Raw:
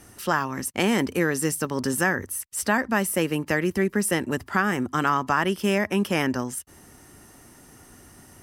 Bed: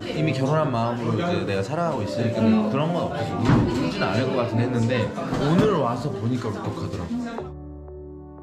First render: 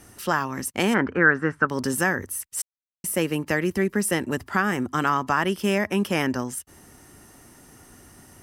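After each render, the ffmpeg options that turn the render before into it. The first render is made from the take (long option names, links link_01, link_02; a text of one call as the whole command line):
ffmpeg -i in.wav -filter_complex "[0:a]asplit=3[link_01][link_02][link_03];[link_01]afade=type=out:start_time=0.93:duration=0.02[link_04];[link_02]lowpass=frequency=1500:width_type=q:width=6.1,afade=type=in:start_time=0.93:duration=0.02,afade=type=out:start_time=1.68:duration=0.02[link_05];[link_03]afade=type=in:start_time=1.68:duration=0.02[link_06];[link_04][link_05][link_06]amix=inputs=3:normalize=0,asplit=3[link_07][link_08][link_09];[link_07]atrim=end=2.62,asetpts=PTS-STARTPTS,afade=type=out:start_time=2.616:duration=0.004:curve=hsin[link_10];[link_08]atrim=start=2.62:end=3.04,asetpts=PTS-STARTPTS,volume=0[link_11];[link_09]atrim=start=3.04,asetpts=PTS-STARTPTS,afade=type=in:duration=0.004:curve=hsin[link_12];[link_10][link_11][link_12]concat=n=3:v=0:a=1" out.wav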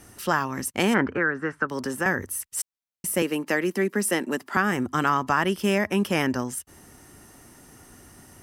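ffmpeg -i in.wav -filter_complex "[0:a]asettb=1/sr,asplit=3[link_01][link_02][link_03];[link_01]atrim=end=1.174[link_04];[link_02]atrim=start=1.17:end=2.06,asetpts=PTS-STARTPTS,afade=type=in:duration=0.004:curve=qsin,afade=type=out:start_time=0.886:duration=0.004:curve=qsin,acrossover=split=220|480|2600[link_05][link_06][link_07][link_08];[link_05]acompressor=threshold=-43dB:ratio=3[link_09];[link_06]acompressor=threshold=-31dB:ratio=3[link_10];[link_07]acompressor=threshold=-25dB:ratio=3[link_11];[link_08]acompressor=threshold=-41dB:ratio=3[link_12];[link_09][link_10][link_11][link_12]amix=inputs=4:normalize=0[link_13];[link_03]atrim=start=2.056[link_14];[link_04][link_13]acrossfade=duration=0.004:curve1=hsin:curve2=qsin[link_15];[link_15][link_14]acrossfade=duration=0.004:curve1=qsin:curve2=hsin,asettb=1/sr,asplit=3[link_16][link_17][link_18];[link_16]atrim=end=3.224[link_19];[link_17]atrim=start=3.22:end=4.57,asetpts=PTS-STARTPTS,afade=type=in:duration=0.004:curve=qsin,afade=type=out:start_time=1.346:duration=0.004:curve=qsin,highpass=frequency=200:width=0.5412,highpass=frequency=200:width=1.3066[link_20];[link_18]atrim=start=4.566[link_21];[link_19][link_20]acrossfade=duration=0.004:curve1=hsin:curve2=qsin[link_22];[link_22][link_21]acrossfade=duration=0.004:curve1=qsin:curve2=hsin" out.wav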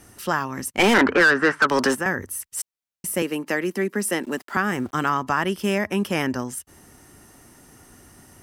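ffmpeg -i in.wav -filter_complex "[0:a]asplit=3[link_01][link_02][link_03];[link_01]afade=type=out:start_time=0.78:duration=0.02[link_04];[link_02]asplit=2[link_05][link_06];[link_06]highpass=frequency=720:poles=1,volume=24dB,asoftclip=type=tanh:threshold=-6.5dB[link_07];[link_05][link_07]amix=inputs=2:normalize=0,lowpass=frequency=3500:poles=1,volume=-6dB,afade=type=in:start_time=0.78:duration=0.02,afade=type=out:start_time=1.94:duration=0.02[link_08];[link_03]afade=type=in:start_time=1.94:duration=0.02[link_09];[link_04][link_08][link_09]amix=inputs=3:normalize=0,asettb=1/sr,asplit=3[link_10][link_11][link_12];[link_10]atrim=end=4.234[link_13];[link_11]atrim=start=4.23:end=5.12,asetpts=PTS-STARTPTS,afade=type=in:duration=0.004:curve=qsin,afade=type=out:start_time=0.886:duration=0.004:curve=qsin,aeval=exprs='val(0)*gte(abs(val(0)),0.00501)':channel_layout=same[link_14];[link_12]atrim=start=5.116[link_15];[link_13][link_14]acrossfade=duration=0.004:curve1=hsin:curve2=qsin[link_16];[link_16][link_15]acrossfade=duration=0.004:curve1=qsin:curve2=hsin" out.wav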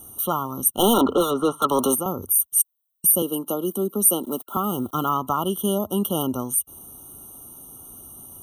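ffmpeg -i in.wav -af "aexciter=amount=9.5:drive=3.5:freq=8700,afftfilt=real='re*eq(mod(floor(b*sr/1024/1400),2),0)':imag='im*eq(mod(floor(b*sr/1024/1400),2),0)':win_size=1024:overlap=0.75" out.wav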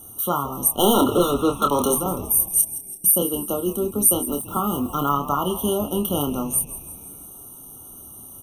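ffmpeg -i in.wav -filter_complex "[0:a]asplit=2[link_01][link_02];[link_02]adelay=28,volume=-6dB[link_03];[link_01][link_03]amix=inputs=2:normalize=0,asplit=7[link_04][link_05][link_06][link_07][link_08][link_09][link_10];[link_05]adelay=166,afreqshift=-110,volume=-14dB[link_11];[link_06]adelay=332,afreqshift=-220,volume=-18.7dB[link_12];[link_07]adelay=498,afreqshift=-330,volume=-23.5dB[link_13];[link_08]adelay=664,afreqshift=-440,volume=-28.2dB[link_14];[link_09]adelay=830,afreqshift=-550,volume=-32.9dB[link_15];[link_10]adelay=996,afreqshift=-660,volume=-37.7dB[link_16];[link_04][link_11][link_12][link_13][link_14][link_15][link_16]amix=inputs=7:normalize=0" out.wav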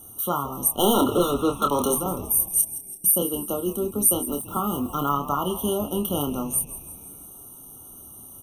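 ffmpeg -i in.wav -af "volume=-2.5dB" out.wav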